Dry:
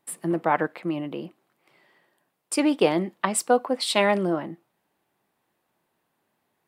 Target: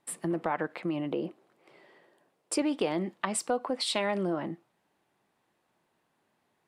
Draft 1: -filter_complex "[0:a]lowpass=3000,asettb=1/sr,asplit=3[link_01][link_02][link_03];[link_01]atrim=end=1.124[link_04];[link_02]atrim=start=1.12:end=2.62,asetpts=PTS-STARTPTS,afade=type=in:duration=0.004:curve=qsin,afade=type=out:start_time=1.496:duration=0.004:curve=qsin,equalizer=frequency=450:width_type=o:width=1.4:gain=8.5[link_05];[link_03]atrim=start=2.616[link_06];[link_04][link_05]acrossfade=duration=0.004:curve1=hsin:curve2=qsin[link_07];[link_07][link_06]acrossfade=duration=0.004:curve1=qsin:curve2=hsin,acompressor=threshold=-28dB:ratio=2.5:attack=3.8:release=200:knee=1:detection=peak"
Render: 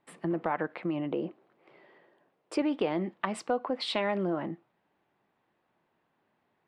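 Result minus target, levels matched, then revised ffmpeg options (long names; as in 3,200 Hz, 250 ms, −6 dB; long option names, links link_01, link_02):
8,000 Hz band −13.5 dB
-filter_complex "[0:a]lowpass=9500,asettb=1/sr,asplit=3[link_01][link_02][link_03];[link_01]atrim=end=1.124[link_04];[link_02]atrim=start=1.12:end=2.62,asetpts=PTS-STARTPTS,afade=type=in:duration=0.004:curve=qsin,afade=type=out:start_time=1.496:duration=0.004:curve=qsin,equalizer=frequency=450:width_type=o:width=1.4:gain=8.5[link_05];[link_03]atrim=start=2.616[link_06];[link_04][link_05]acrossfade=duration=0.004:curve1=hsin:curve2=qsin[link_07];[link_07][link_06]acrossfade=duration=0.004:curve1=qsin:curve2=hsin,acompressor=threshold=-28dB:ratio=2.5:attack=3.8:release=200:knee=1:detection=peak"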